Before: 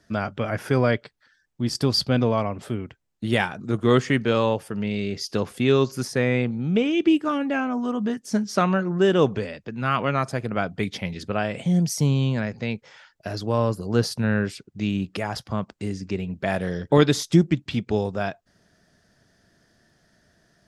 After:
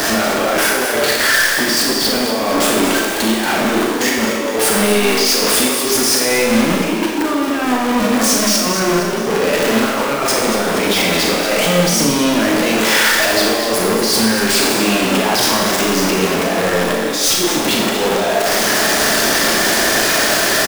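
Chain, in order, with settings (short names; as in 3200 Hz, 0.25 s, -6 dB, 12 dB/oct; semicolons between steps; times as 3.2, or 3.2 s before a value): zero-crossing step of -22 dBFS; HPF 260 Hz 24 dB/oct; notches 50/100/150/200/250/300/350/400/450/500 Hz; negative-ratio compressor -27 dBFS, ratio -0.5; limiter -18 dBFS, peak gain reduction 7.5 dB; on a send: frequency-shifting echo 0.232 s, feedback 48%, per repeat +48 Hz, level -11 dB; on the sum: sample leveller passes 3; Schroeder reverb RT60 1.1 s, combs from 28 ms, DRR -1 dB; gain +2.5 dB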